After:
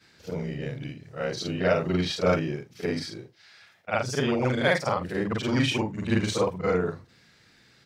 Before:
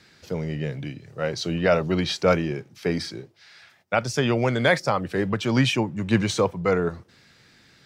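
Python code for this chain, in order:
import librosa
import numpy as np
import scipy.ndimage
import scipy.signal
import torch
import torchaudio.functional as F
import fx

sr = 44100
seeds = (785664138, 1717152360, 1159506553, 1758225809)

y = fx.frame_reverse(x, sr, frame_ms=111.0)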